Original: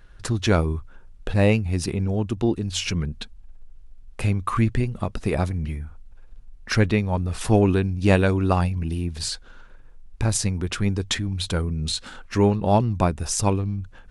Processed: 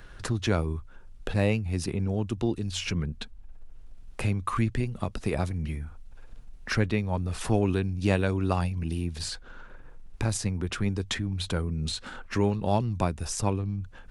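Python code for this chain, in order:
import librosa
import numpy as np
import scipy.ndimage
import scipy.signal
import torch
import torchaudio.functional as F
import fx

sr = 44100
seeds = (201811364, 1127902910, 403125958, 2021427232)

y = fx.band_squash(x, sr, depth_pct=40)
y = y * 10.0 ** (-5.5 / 20.0)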